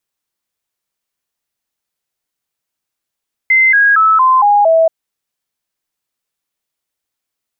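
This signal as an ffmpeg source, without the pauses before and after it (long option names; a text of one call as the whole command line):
ffmpeg -f lavfi -i "aevalsrc='0.501*clip(min(mod(t,0.23),0.23-mod(t,0.23))/0.005,0,1)*sin(2*PI*2070*pow(2,-floor(t/0.23)/3)*mod(t,0.23))':duration=1.38:sample_rate=44100" out.wav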